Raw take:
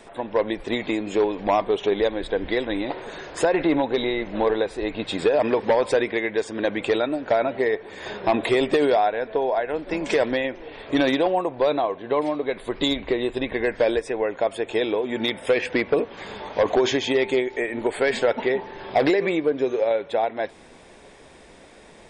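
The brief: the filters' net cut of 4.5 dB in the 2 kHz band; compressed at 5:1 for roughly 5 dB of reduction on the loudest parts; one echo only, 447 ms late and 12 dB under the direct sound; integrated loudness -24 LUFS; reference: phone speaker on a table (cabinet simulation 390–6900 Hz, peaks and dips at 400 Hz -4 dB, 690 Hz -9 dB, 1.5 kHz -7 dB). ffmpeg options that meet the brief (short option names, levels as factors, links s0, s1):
-af "equalizer=f=2000:t=o:g=-3,acompressor=threshold=0.0891:ratio=5,highpass=f=390:w=0.5412,highpass=f=390:w=1.3066,equalizer=f=400:t=q:w=4:g=-4,equalizer=f=690:t=q:w=4:g=-9,equalizer=f=1500:t=q:w=4:g=-7,lowpass=f=6900:w=0.5412,lowpass=f=6900:w=1.3066,aecho=1:1:447:0.251,volume=2.37"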